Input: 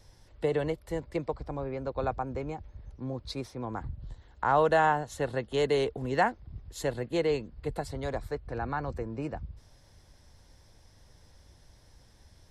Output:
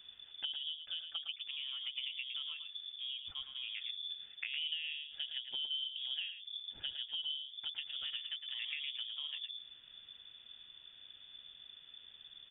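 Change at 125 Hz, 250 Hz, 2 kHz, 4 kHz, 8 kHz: under -35 dB, under -40 dB, -10.0 dB, +10.5 dB, under -30 dB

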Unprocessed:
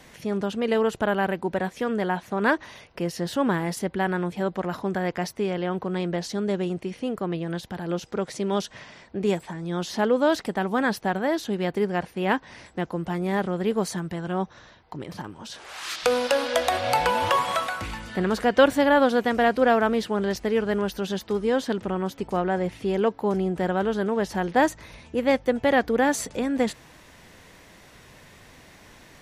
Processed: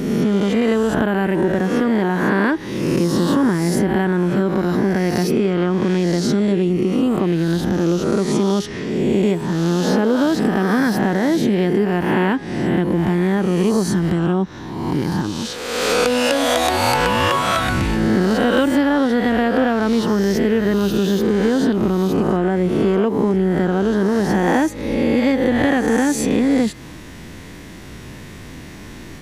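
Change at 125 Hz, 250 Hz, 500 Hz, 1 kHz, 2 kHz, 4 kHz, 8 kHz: +11.5 dB, +11.0 dB, +5.5 dB, +3.5 dB, +5.0 dB, +7.0 dB, +8.0 dB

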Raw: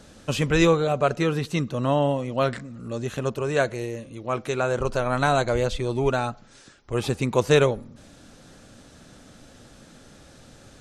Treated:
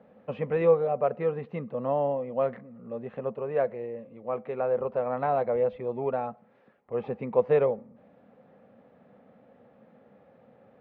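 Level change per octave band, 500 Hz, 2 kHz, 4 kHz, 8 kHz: -2.0 dB, -14.5 dB, under -25 dB, under -40 dB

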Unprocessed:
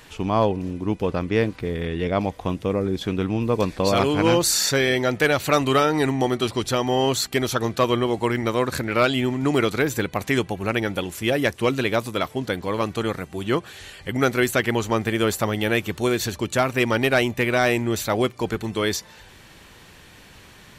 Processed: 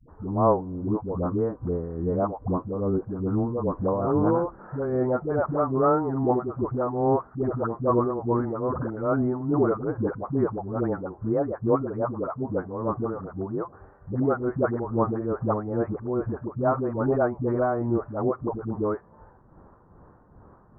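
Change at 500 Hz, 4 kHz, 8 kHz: -3.0 dB, under -40 dB, under -40 dB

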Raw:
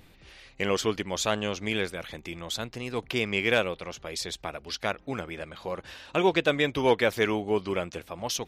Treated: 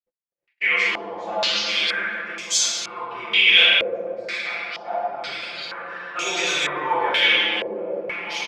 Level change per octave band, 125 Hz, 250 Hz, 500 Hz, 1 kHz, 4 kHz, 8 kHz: under -10 dB, -7.0 dB, -1.5 dB, +6.0 dB, +14.0 dB, +10.5 dB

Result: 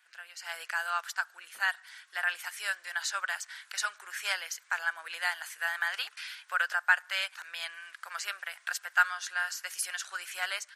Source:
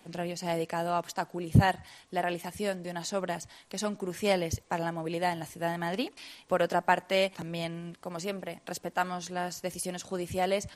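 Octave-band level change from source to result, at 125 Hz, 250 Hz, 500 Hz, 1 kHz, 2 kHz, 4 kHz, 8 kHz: under -40 dB, under -40 dB, -20.0 dB, -4.5 dB, +8.0 dB, +2.0 dB, +2.5 dB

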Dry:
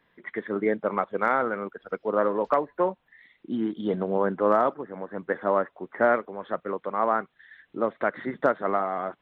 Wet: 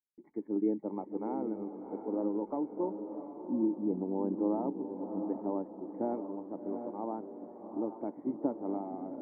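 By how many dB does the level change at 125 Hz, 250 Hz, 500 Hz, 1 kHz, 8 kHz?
-7.5 dB, -1.0 dB, -11.5 dB, -15.5 dB, no reading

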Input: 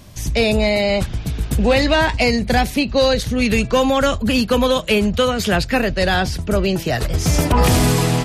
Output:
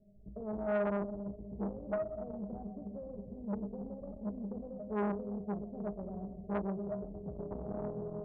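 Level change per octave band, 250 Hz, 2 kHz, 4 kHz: -19.5 dB, -31.0 dB, under -40 dB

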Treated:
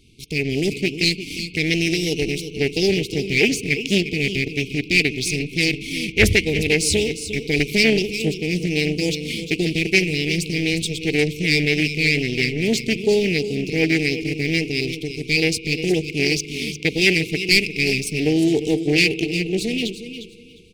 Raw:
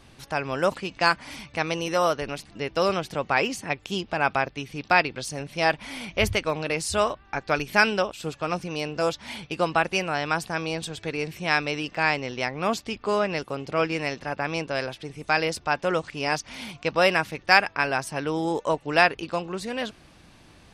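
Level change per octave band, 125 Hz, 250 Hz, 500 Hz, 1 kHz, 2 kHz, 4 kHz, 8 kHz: +10.5 dB, +11.0 dB, +4.0 dB, -19.0 dB, +4.5 dB, +9.5 dB, +10.0 dB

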